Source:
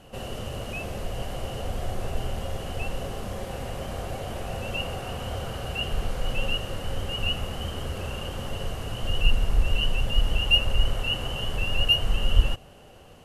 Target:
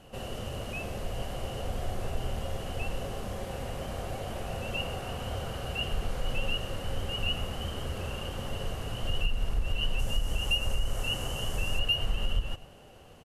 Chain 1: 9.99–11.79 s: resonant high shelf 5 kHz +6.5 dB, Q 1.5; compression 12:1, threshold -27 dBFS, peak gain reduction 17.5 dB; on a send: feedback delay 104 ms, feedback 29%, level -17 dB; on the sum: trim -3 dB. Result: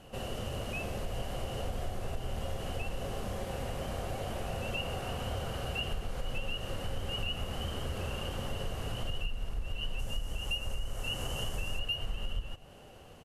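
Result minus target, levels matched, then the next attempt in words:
compression: peak gain reduction +7 dB
9.99–11.79 s: resonant high shelf 5 kHz +6.5 dB, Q 1.5; compression 12:1, threshold -19.5 dBFS, peak gain reduction 11 dB; on a send: feedback delay 104 ms, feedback 29%, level -17 dB; on the sum: trim -3 dB

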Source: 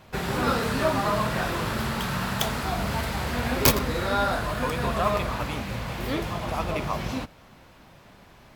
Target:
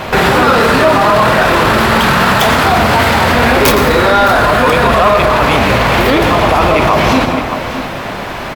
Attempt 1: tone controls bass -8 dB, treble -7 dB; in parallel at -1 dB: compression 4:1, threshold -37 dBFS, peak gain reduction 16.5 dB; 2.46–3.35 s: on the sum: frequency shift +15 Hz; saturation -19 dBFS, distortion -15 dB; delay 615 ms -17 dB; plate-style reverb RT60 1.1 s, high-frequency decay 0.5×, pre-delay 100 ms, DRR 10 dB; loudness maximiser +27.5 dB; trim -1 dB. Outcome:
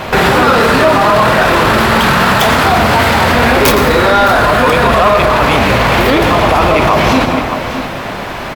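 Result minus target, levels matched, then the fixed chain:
compression: peak gain reduction -8 dB
tone controls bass -8 dB, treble -7 dB; in parallel at -1 dB: compression 4:1, threshold -47.5 dBFS, peak gain reduction 24.5 dB; 2.46–3.35 s: on the sum: frequency shift +15 Hz; saturation -19 dBFS, distortion -16 dB; delay 615 ms -17 dB; plate-style reverb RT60 1.1 s, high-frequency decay 0.5×, pre-delay 100 ms, DRR 10 dB; loudness maximiser +27.5 dB; trim -1 dB

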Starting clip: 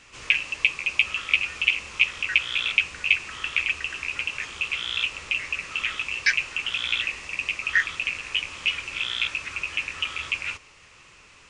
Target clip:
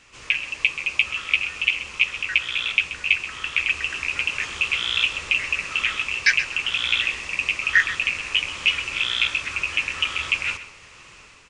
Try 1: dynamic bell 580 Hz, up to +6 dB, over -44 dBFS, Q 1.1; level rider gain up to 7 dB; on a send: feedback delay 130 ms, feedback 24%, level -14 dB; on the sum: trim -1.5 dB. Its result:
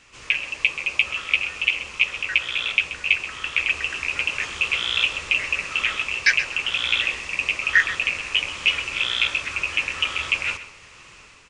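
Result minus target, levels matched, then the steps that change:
500 Hz band +3.5 dB
remove: dynamic bell 580 Hz, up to +6 dB, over -44 dBFS, Q 1.1

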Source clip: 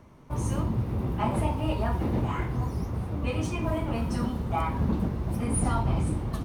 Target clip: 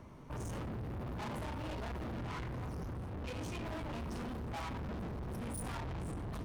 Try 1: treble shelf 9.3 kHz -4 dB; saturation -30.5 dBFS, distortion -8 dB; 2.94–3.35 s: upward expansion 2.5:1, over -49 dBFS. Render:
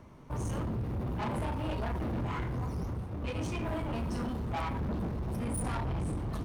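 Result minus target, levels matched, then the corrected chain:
saturation: distortion -4 dB
treble shelf 9.3 kHz -4 dB; saturation -39.5 dBFS, distortion -4 dB; 2.94–3.35 s: upward expansion 2.5:1, over -49 dBFS

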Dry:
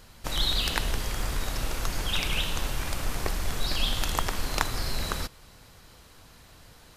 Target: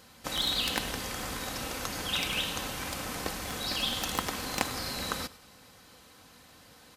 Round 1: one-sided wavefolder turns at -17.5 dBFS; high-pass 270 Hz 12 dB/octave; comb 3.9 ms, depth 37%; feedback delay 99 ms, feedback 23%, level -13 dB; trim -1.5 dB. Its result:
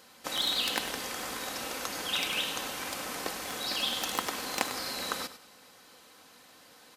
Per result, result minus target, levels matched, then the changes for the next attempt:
125 Hz band -10.5 dB; echo-to-direct +6 dB
change: high-pass 110 Hz 12 dB/octave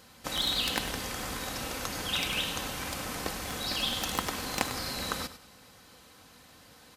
echo-to-direct +6 dB
change: feedback delay 99 ms, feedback 23%, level -19 dB

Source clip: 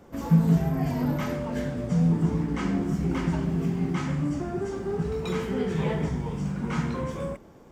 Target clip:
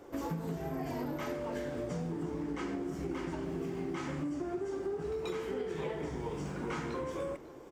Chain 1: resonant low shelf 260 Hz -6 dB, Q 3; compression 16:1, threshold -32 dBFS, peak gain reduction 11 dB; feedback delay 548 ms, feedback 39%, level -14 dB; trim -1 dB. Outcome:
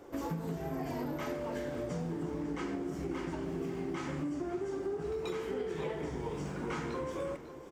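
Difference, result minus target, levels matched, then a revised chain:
echo-to-direct +6 dB
resonant low shelf 260 Hz -6 dB, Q 3; compression 16:1, threshold -32 dBFS, peak gain reduction 11 dB; feedback delay 548 ms, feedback 39%, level -20 dB; trim -1 dB

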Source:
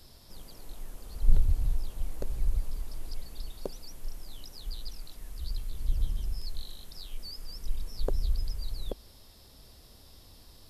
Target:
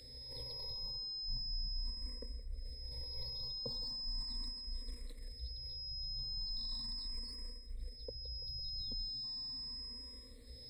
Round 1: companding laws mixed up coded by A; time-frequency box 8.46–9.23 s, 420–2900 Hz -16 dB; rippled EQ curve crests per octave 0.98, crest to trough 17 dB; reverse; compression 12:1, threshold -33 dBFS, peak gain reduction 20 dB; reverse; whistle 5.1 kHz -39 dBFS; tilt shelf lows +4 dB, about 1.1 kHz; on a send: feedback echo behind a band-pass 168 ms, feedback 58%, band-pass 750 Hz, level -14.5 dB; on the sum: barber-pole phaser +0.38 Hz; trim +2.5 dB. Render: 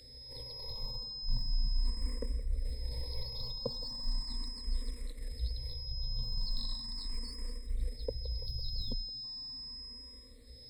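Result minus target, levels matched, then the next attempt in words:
compression: peak gain reduction -10.5 dB
companding laws mixed up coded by A; time-frequency box 8.46–9.23 s, 420–2900 Hz -16 dB; rippled EQ curve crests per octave 0.98, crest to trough 17 dB; reverse; compression 12:1, threshold -44.5 dBFS, peak gain reduction 31 dB; reverse; whistle 5.1 kHz -39 dBFS; tilt shelf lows +4 dB, about 1.1 kHz; on a send: feedback echo behind a band-pass 168 ms, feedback 58%, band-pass 750 Hz, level -14.5 dB; on the sum: barber-pole phaser +0.38 Hz; trim +2.5 dB

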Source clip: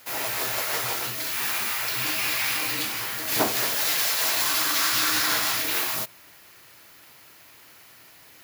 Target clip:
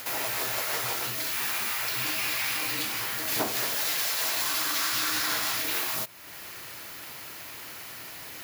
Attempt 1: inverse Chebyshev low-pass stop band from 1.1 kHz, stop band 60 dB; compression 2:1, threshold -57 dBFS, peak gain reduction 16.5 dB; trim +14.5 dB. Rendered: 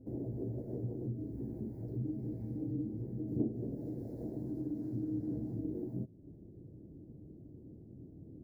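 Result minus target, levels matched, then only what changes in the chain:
1 kHz band -18.0 dB
remove: inverse Chebyshev low-pass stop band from 1.1 kHz, stop band 60 dB

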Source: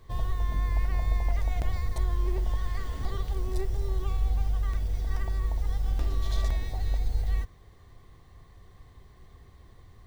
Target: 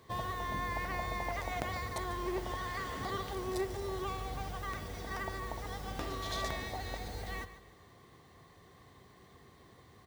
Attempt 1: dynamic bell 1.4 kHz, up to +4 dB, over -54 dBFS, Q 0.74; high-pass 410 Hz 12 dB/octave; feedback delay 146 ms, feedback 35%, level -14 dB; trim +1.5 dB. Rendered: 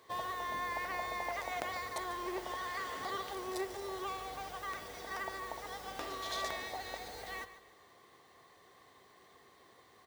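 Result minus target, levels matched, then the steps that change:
125 Hz band -14.0 dB
change: high-pass 160 Hz 12 dB/octave

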